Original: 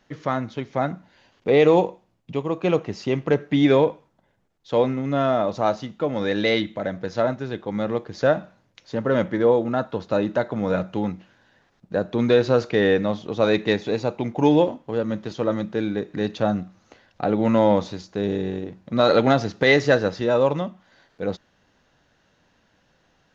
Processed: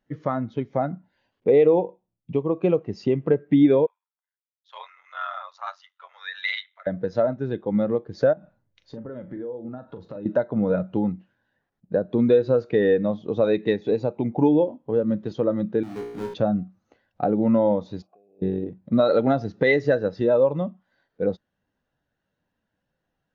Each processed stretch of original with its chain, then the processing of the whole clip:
3.86–6.87 s: high-pass 1.1 kHz 24 dB/octave + ring modulator 46 Hz
8.33–10.26 s: bass shelf 66 Hz +10.5 dB + compression 20:1, threshold -32 dBFS + doubling 40 ms -9.5 dB
15.83–16.34 s: square wave that keeps the level + feedback comb 59 Hz, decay 1.1 s, mix 90% + three bands compressed up and down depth 40%
18.02–18.42 s: compressor with a negative ratio -36 dBFS + vowel filter a + tilt EQ -2.5 dB/octave
whole clip: compression 3:1, threshold -25 dBFS; spectral contrast expander 1.5:1; trim +3 dB

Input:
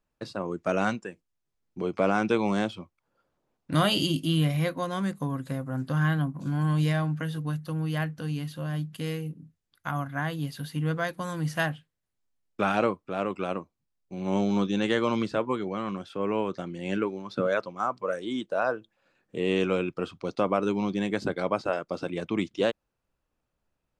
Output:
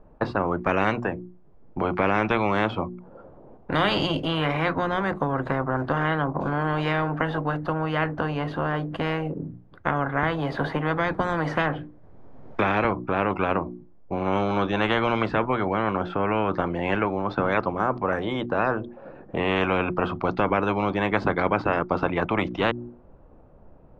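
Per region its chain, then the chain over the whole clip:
10.23–12.85 s: band-stop 2.8 kHz, Q 14 + three bands compressed up and down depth 70%
whole clip: Chebyshev low-pass 660 Hz, order 2; hum notches 60/120/180/240/300/360 Hz; spectrum-flattening compressor 4:1; trim +6 dB

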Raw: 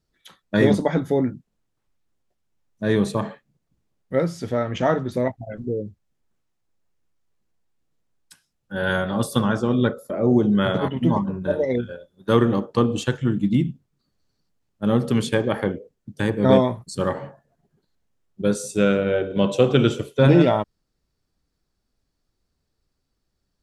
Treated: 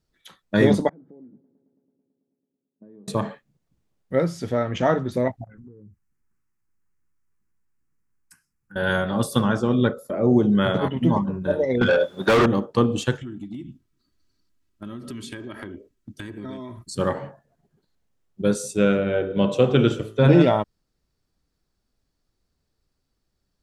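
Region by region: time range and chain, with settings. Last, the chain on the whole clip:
0.89–3.08 s: compression 20:1, threshold -31 dBFS + ladder band-pass 310 Hz, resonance 30% + multi-head delay 110 ms, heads first and second, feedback 72%, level -22 dB
5.44–8.76 s: compression 5:1, threshold -41 dBFS + static phaser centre 1.5 kHz, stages 4
11.81–12.46 s: overdrive pedal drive 36 dB, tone 2.2 kHz, clips at -3.5 dBFS + compression 5:1, threshold -14 dBFS
13.21–16.91 s: high-order bell 640 Hz -8 dB 1.2 oct + comb 3.1 ms, depth 57% + compression 8:1, threshold -32 dBFS
18.73–20.33 s: treble shelf 4.5 kHz -6.5 dB + de-hum 54.15 Hz, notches 37
whole clip: none

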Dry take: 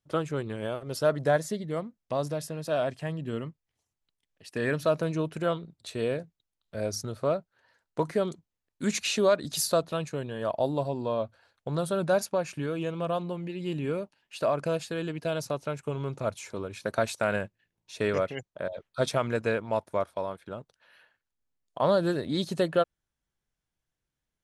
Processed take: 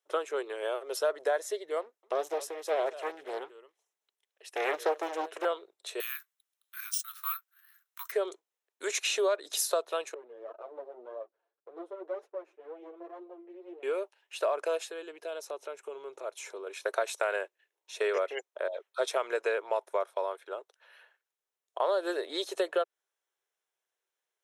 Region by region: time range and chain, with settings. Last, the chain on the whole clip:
1.81–5.45 s: delay 220 ms -17.5 dB + loudspeaker Doppler distortion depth 0.78 ms
6.00–8.12 s: steep high-pass 1.1 kHz 96 dB/octave + careless resampling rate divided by 3×, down none, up zero stuff
10.14–13.83 s: comb filter that takes the minimum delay 8.8 ms + band-pass filter 250 Hz, Q 1.3 + flange 1.9 Hz, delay 1.3 ms, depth 4.8 ms, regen +40%
14.89–16.67 s: bass shelf 230 Hz +11.5 dB + compression 2:1, threshold -40 dBFS
whole clip: elliptic high-pass 390 Hz, stop band 50 dB; compression 3:1, threshold -28 dBFS; band-stop 4.6 kHz, Q 6.9; trim +2 dB

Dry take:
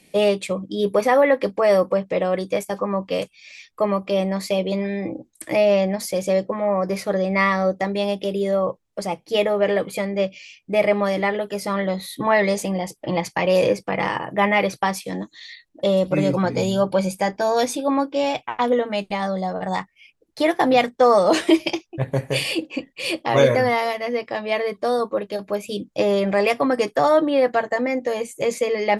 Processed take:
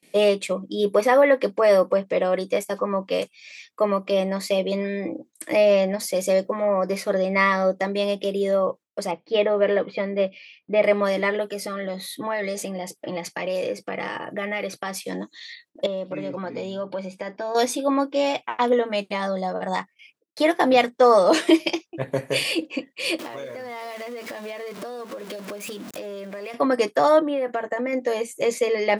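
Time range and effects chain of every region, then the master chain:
6.19–6.65 s: treble shelf 8.3 kHz +10.5 dB + band-stop 3 kHz, Q 19
9.11–10.84 s: steep low-pass 4.9 kHz + treble shelf 3.5 kHz -7.5 dB
11.48–15.06 s: Butterworth band-stop 1 kHz, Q 6.9 + compression 2.5:1, threshold -26 dBFS
15.86–17.55 s: band-pass 110–3800 Hz + compression 2.5:1, threshold -29 dBFS
23.19–26.54 s: jump at every zero crossing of -28 dBFS + compression 16:1, threshold -30 dBFS
27.19–27.93 s: peaking EQ 4.6 kHz -13 dB 0.61 oct + compression 10:1, threshold -20 dBFS
whole clip: high-pass 210 Hz 12 dB/octave; band-stop 800 Hz, Q 12; gate with hold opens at -46 dBFS

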